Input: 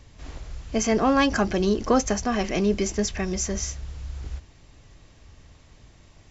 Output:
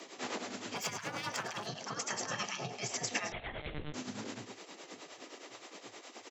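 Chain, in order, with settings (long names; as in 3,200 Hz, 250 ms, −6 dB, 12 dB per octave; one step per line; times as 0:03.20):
0:02.27–0:02.70: notch filter 2,000 Hz, Q 6.5
on a send at −22 dB: convolution reverb, pre-delay 5 ms
on the sum: downward compressor 6 to 1, threshold −29 dBFS, peak gain reduction 12.5 dB
low-shelf EQ 380 Hz +2.5 dB
brickwall limiter −27 dBFS, peak gain reduction 8.5 dB
repeating echo 105 ms, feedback 51%, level −13 dB
0:00.75–0:01.67: hard clipping −32 dBFS, distortion −19 dB
gate on every frequency bin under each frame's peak −15 dB weak
shaped tremolo triangle 9.6 Hz, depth 75%
frequency shifter +100 Hz
0:03.32–0:03.94: one-pitch LPC vocoder at 8 kHz 150 Hz
level +11 dB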